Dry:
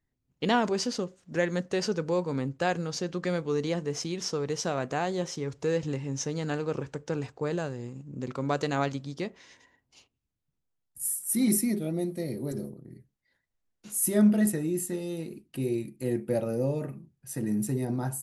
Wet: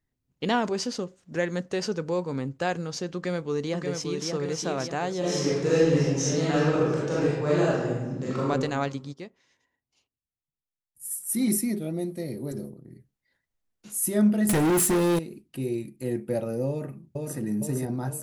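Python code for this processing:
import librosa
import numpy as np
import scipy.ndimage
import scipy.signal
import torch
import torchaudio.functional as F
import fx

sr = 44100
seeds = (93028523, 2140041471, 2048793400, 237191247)

y = fx.echo_throw(x, sr, start_s=3.15, length_s=1.14, ms=580, feedback_pct=55, wet_db=-4.5)
y = fx.reverb_throw(y, sr, start_s=5.19, length_s=3.25, rt60_s=1.2, drr_db=-8.0)
y = fx.upward_expand(y, sr, threshold_db=-43.0, expansion=1.5, at=(9.12, 11.1), fade=0.02)
y = fx.leveller(y, sr, passes=5, at=(14.49, 15.19))
y = fx.echo_throw(y, sr, start_s=16.69, length_s=0.7, ms=460, feedback_pct=60, wet_db=-2.0)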